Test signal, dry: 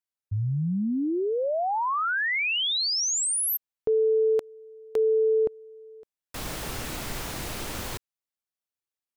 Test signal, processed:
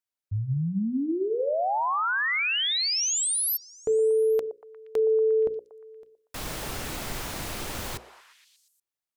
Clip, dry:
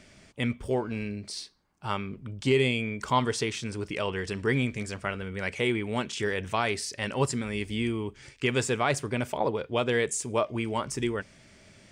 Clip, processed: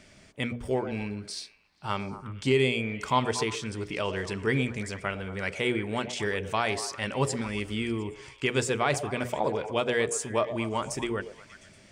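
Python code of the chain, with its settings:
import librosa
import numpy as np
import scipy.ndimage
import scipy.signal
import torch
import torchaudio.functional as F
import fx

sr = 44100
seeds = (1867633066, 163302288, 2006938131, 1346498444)

y = fx.hum_notches(x, sr, base_hz=60, count=9)
y = fx.echo_stepped(y, sr, ms=118, hz=560.0, octaves=0.7, feedback_pct=70, wet_db=-8.5)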